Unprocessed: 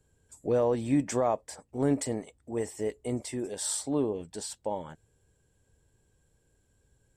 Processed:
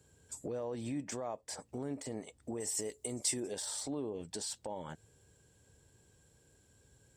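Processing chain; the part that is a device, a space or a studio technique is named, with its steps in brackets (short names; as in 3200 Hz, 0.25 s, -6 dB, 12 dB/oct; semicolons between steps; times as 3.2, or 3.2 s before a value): broadcast voice chain (HPF 70 Hz; de-esser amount 75%; compressor 4:1, threshold -40 dBFS, peak gain reduction 16 dB; bell 5200 Hz +4.5 dB 1.5 oct; limiter -34 dBFS, peak gain reduction 8 dB); 2.6–3.4 tone controls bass -1 dB, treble +11 dB; gain +4 dB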